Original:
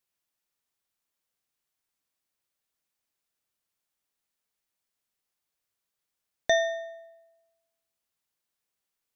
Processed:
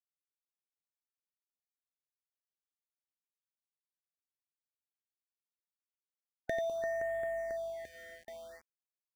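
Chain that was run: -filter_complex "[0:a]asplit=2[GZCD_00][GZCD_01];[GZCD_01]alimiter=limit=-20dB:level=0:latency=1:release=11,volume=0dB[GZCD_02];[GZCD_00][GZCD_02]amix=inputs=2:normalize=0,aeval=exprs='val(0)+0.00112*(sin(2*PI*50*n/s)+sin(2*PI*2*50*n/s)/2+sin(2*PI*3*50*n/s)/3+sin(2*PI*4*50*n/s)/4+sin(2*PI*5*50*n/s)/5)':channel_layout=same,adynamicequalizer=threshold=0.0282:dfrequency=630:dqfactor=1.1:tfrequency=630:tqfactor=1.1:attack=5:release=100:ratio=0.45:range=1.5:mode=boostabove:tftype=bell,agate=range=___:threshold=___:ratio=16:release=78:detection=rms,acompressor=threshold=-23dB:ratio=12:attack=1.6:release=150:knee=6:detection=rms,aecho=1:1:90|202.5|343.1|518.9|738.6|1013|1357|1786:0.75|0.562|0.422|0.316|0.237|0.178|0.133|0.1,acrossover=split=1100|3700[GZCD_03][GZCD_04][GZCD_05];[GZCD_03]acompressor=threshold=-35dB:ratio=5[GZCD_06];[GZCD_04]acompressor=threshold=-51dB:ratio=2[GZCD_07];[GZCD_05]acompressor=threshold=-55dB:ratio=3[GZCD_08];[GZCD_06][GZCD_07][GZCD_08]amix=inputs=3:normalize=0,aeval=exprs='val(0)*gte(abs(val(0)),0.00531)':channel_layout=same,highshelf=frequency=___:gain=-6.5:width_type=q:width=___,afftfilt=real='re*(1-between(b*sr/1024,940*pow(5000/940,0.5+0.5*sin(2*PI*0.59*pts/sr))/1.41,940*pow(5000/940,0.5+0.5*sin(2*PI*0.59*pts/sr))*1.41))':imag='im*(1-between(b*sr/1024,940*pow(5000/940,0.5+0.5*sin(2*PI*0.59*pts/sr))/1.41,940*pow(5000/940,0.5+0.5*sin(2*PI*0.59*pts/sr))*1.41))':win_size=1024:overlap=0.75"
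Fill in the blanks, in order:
-19dB, -49dB, 2.4k, 1.5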